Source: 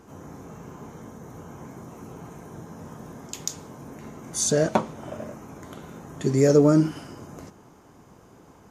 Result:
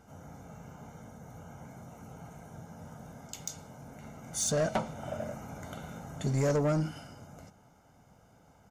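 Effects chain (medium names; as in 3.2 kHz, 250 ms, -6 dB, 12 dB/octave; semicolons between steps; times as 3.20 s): comb 1.4 ms, depth 63%; gain riding within 5 dB 2 s; saturation -18 dBFS, distortion -11 dB; trim -5 dB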